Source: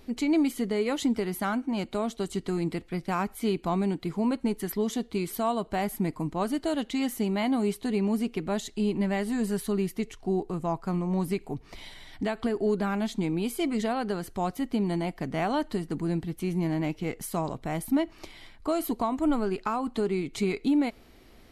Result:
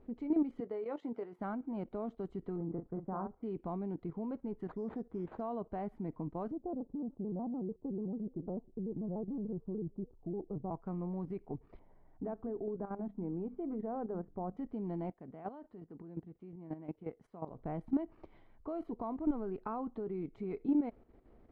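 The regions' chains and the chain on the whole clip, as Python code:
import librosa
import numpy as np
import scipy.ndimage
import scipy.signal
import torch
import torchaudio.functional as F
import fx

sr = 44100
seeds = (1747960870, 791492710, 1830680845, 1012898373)

y = fx.chain(x, sr, fx.highpass(hz=380.0, slope=12),
    fx.doubler(ms=17.0, db=-13.5), at=(0.6, 1.39))
y = fx.chain(y, sr, fx.lowpass(hz=1300.0, slope=24),
    fx.doubler(ms=42.0, db=-6), at=(2.56, 3.43))
y = fx.chain(y, sr, fx.band_shelf(hz=3300.0, db=-13.0, octaves=1.0),
    fx.resample_bad(factor=8, down='none', up='hold'), at=(4.67, 5.41))
y = fx.chain(y, sr, fx.gaussian_blur(sigma=11.0),
    fx.vibrato_shape(shape='square', rate_hz=6.8, depth_cents=160.0), at=(6.51, 10.71))
y = fx.chain(y, sr, fx.lowpass(hz=1100.0, slope=12),
    fx.hum_notches(base_hz=50, count=6), at=(11.79, 14.57))
y = fx.chain(y, sr, fx.highpass(hz=140.0, slope=6),
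    fx.chopper(hz=5.6, depth_pct=60, duty_pct=15), at=(15.1, 17.51))
y = scipy.signal.sosfilt(scipy.signal.butter(2, 1000.0, 'lowpass', fs=sr, output='sos'), y)
y = fx.peak_eq(y, sr, hz=470.0, db=3.0, octaves=0.37)
y = fx.level_steps(y, sr, step_db=11)
y = y * 10.0 ** (-5.0 / 20.0)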